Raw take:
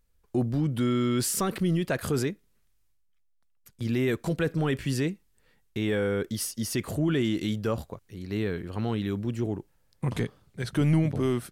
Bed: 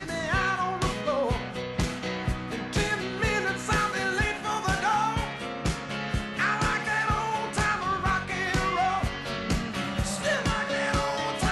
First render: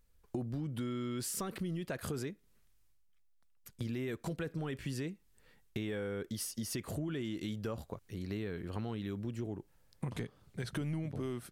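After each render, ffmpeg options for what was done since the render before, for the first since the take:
-af "acompressor=threshold=0.0158:ratio=6"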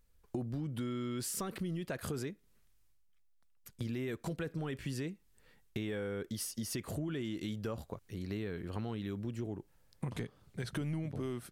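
-af anull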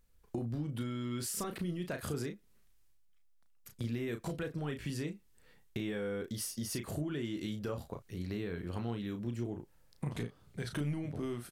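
-filter_complex "[0:a]asplit=2[s0][s1];[s1]adelay=34,volume=0.447[s2];[s0][s2]amix=inputs=2:normalize=0"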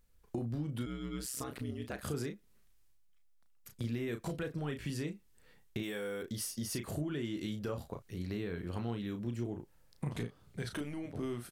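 -filter_complex "[0:a]asplit=3[s0][s1][s2];[s0]afade=t=out:st=0.85:d=0.02[s3];[s1]aeval=exprs='val(0)*sin(2*PI*65*n/s)':c=same,afade=t=in:st=0.85:d=0.02,afade=t=out:st=2.03:d=0.02[s4];[s2]afade=t=in:st=2.03:d=0.02[s5];[s3][s4][s5]amix=inputs=3:normalize=0,asplit=3[s6][s7][s8];[s6]afade=t=out:st=5.82:d=0.02[s9];[s7]aemphasis=mode=production:type=bsi,afade=t=in:st=5.82:d=0.02,afade=t=out:st=6.22:d=0.02[s10];[s8]afade=t=in:st=6.22:d=0.02[s11];[s9][s10][s11]amix=inputs=3:normalize=0,asettb=1/sr,asplit=3[s12][s13][s14];[s12]atrim=end=10.694[s15];[s13]atrim=start=10.69:end=11.15,asetpts=PTS-STARTPTS,afade=t=in:d=0.004:c=qsin,afade=t=out:st=0.456:d=0.004:c=qsin,equalizer=f=140:w=2.4:g=-13.5[s16];[s14]atrim=start=11.146[s17];[s15][s16]acrossfade=d=0.004:c1=hsin:c2=qsin[s18];[s18][s17]acrossfade=d=0.004:c1=qsin:c2=hsin"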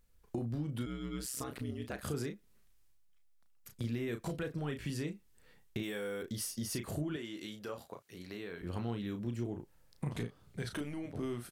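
-filter_complex "[0:a]asettb=1/sr,asplit=3[s0][s1][s2];[s0]atrim=end=7.164[s3];[s1]atrim=start=7.16:end=8.62,asetpts=PTS-STARTPTS,afade=t=in:d=0.004:c=qsin,afade=t=out:st=1.456:d=0.004:c=qsin,highpass=f=530:p=1[s4];[s2]atrim=start=8.616[s5];[s3][s4]acrossfade=d=0.004:c1=hsin:c2=qsin[s6];[s6][s5]acrossfade=d=0.004:c1=qsin:c2=hsin"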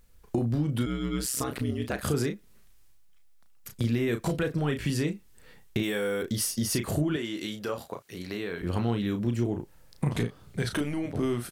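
-af "volume=3.16"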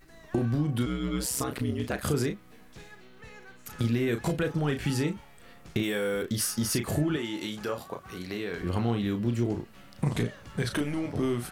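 -filter_complex "[1:a]volume=0.075[s0];[0:a][s0]amix=inputs=2:normalize=0"

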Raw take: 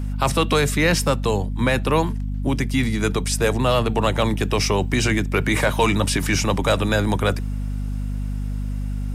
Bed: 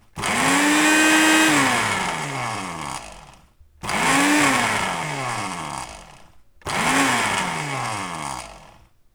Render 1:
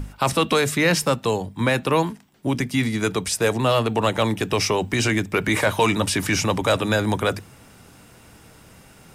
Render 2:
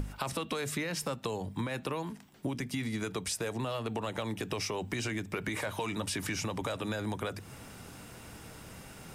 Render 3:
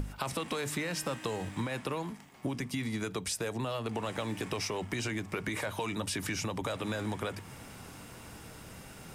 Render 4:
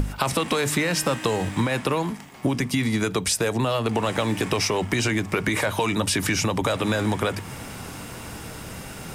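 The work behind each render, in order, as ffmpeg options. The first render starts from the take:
-af "bandreject=f=50:t=h:w=6,bandreject=f=100:t=h:w=6,bandreject=f=150:t=h:w=6,bandreject=f=200:t=h:w=6,bandreject=f=250:t=h:w=6"
-af "alimiter=limit=0.158:level=0:latency=1:release=231,acompressor=threshold=0.0251:ratio=6"
-filter_complex "[1:a]volume=0.0251[s0];[0:a][s0]amix=inputs=2:normalize=0"
-af "volume=3.76"

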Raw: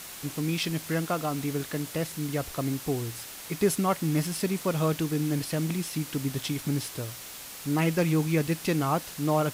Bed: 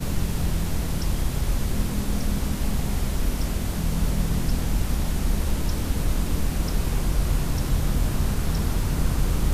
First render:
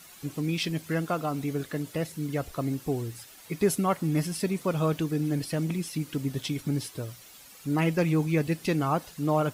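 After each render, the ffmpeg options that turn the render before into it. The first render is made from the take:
-af "afftdn=nr=11:nf=-42"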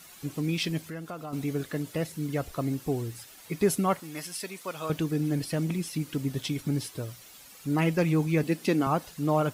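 -filter_complex "[0:a]asettb=1/sr,asplit=3[s0][s1][s2];[s0]atrim=end=0.864[s3];[s1]atrim=start=0.86:end=1.33,asetpts=PTS-STARTPTS,afade=t=in:d=0.004:c=qsin,afade=t=out:st=0.466:d=0.004:c=qsin,acompressor=threshold=0.00794:ratio=2:attack=3.2:release=140:knee=1:detection=peak[s4];[s2]atrim=start=1.326[s5];[s3][s4]acrossfade=d=0.004:c1=hsin:c2=qsin[s6];[s6][s5]acrossfade=d=0.004:c1=qsin:c2=hsin,asettb=1/sr,asplit=3[s7][s8][s9];[s7]atrim=end=4.004[s10];[s8]atrim=start=4:end=4.9,asetpts=PTS-STARTPTS,afade=t=in:d=0.004:c=qsin,afade=t=out:st=0.896:d=0.004:c=qsin,highpass=f=1200:p=1[s11];[s9]atrim=start=4.896[s12];[s10][s11]acrossfade=d=0.004:c1=hsin:c2=qsin[s13];[s13][s12]acrossfade=d=0.004:c1=qsin:c2=hsin,asettb=1/sr,asplit=3[s14][s15][s16];[s14]atrim=end=8.434[s17];[s15]atrim=start=8.43:end=8.87,asetpts=PTS-STARTPTS,afade=t=in:d=0.004:c=qsin,afade=t=out:st=0.436:d=0.004:c=qsin,highpass=f=230:t=q:w=1.5[s18];[s16]atrim=start=8.866[s19];[s17][s18]acrossfade=d=0.004:c1=hsin:c2=qsin[s20];[s20][s19]acrossfade=d=0.004:c1=qsin:c2=hsin"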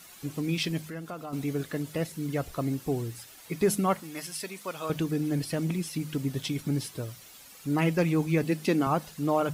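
-af "bandreject=f=51.02:t=h:w=4,bandreject=f=102.04:t=h:w=4,bandreject=f=153.06:t=h:w=4,bandreject=f=204.08:t=h:w=4"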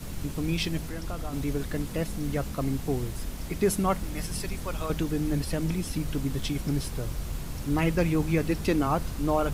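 -filter_complex "[1:a]volume=0.282[s0];[0:a][s0]amix=inputs=2:normalize=0"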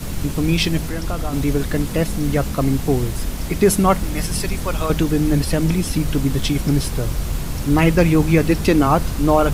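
-af "volume=3.35,alimiter=limit=0.708:level=0:latency=1"

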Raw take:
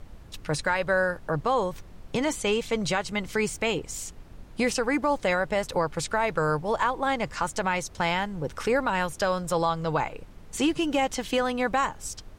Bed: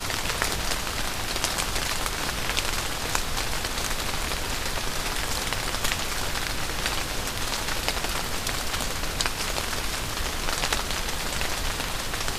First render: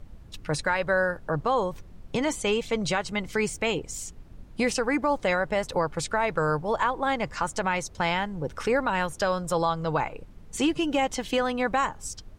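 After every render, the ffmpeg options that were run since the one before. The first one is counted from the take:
-af "afftdn=nr=6:nf=-47"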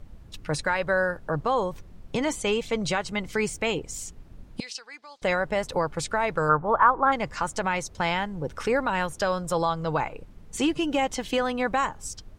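-filter_complex "[0:a]asettb=1/sr,asplit=3[s0][s1][s2];[s0]atrim=end=4.604[s3];[s1]atrim=start=4.6:end=5.22,asetpts=PTS-STARTPTS,afade=t=in:d=0.004:c=qsin,afade=t=out:st=0.616:d=0.004:c=qsin,bandpass=f=4300:t=q:w=2.4[s4];[s2]atrim=start=5.216[s5];[s3][s4]acrossfade=d=0.004:c1=hsin:c2=qsin[s6];[s6][s5]acrossfade=d=0.004:c1=qsin:c2=hsin,asplit=3[s7][s8][s9];[s7]afade=t=out:st=6.48:d=0.02[s10];[s8]lowpass=f=1300:t=q:w=3.5,afade=t=in:st=6.48:d=0.02,afade=t=out:st=7.11:d=0.02[s11];[s9]afade=t=in:st=7.11:d=0.02[s12];[s10][s11][s12]amix=inputs=3:normalize=0"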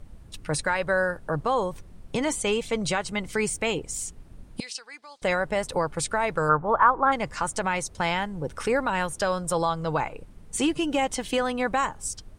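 -af "equalizer=f=9100:w=2.8:g=9.5"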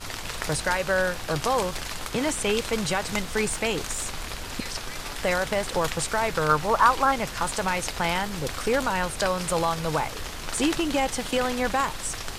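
-filter_complex "[1:a]volume=0.473[s0];[0:a][s0]amix=inputs=2:normalize=0"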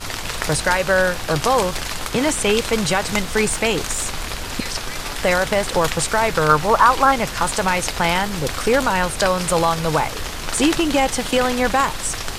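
-af "volume=2.24,alimiter=limit=0.794:level=0:latency=1"

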